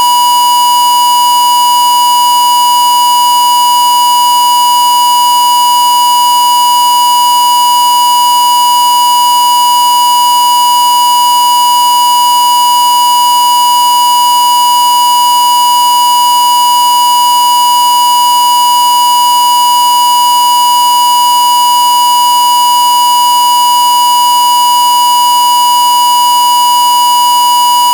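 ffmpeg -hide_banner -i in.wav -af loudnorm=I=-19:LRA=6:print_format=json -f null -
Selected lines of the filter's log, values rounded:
"input_i" : "-5.6",
"input_tp" : "-4.3",
"input_lra" : "0.0",
"input_thresh" : "-15.6",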